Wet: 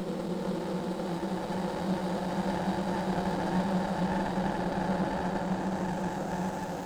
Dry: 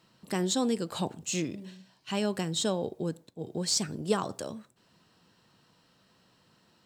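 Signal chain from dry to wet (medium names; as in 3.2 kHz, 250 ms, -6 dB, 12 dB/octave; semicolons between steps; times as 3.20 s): harmonic tremolo 4.9 Hz, crossover 1.6 kHz; Paulstretch 22×, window 0.50 s, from 0.85 s; cabinet simulation 110–9900 Hz, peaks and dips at 190 Hz +5 dB, 280 Hz +4 dB, 560 Hz +6 dB, 840 Hz +10 dB, 4.7 kHz +4 dB; on a send: two-band feedback delay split 900 Hz, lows 564 ms, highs 207 ms, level -13 dB; on the sum: sliding maximum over 17 samples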